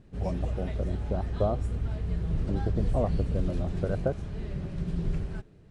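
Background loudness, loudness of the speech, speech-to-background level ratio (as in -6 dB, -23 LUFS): -33.0 LUFS, -33.5 LUFS, -0.5 dB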